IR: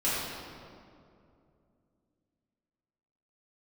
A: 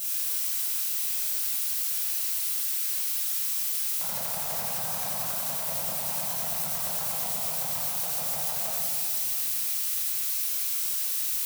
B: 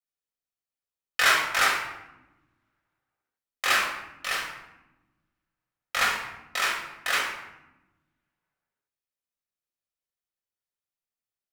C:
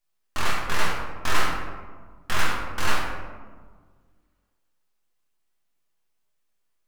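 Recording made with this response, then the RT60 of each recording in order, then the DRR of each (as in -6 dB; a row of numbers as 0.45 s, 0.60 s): A; 2.5 s, 0.95 s, 1.6 s; -10.5 dB, -4.0 dB, -4.0 dB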